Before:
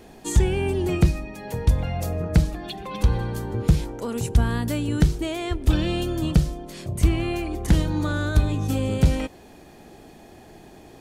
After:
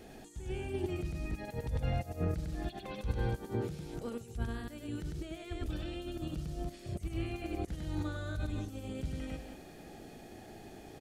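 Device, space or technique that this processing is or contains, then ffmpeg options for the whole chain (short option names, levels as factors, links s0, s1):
de-esser from a sidechain: -filter_complex "[0:a]asettb=1/sr,asplit=3[s0][s1][s2];[s0]atrim=end=3.254[s3];[s1]atrim=start=3.25:end=3.86,asetpts=PTS-STARTPTS,afade=t=in:d=0.004:c=qsin,afade=t=out:st=0.606:d=0.004:c=qsin,highpass=130[s4];[s2]atrim=start=3.856[s5];[s3][s4]acrossfade=d=0.004:c1=hsin:c2=qsin[s6];[s6][s5]acrossfade=d=0.004:c1=qsin:c2=hsin,bandreject=f=1000:w=5.1,aecho=1:1:100|286:0.631|0.126,asplit=2[s7][s8];[s8]highpass=6100,apad=whole_len=497869[s9];[s7][s9]sidechaincompress=threshold=0.00224:ratio=20:attack=1.2:release=53,volume=0.562"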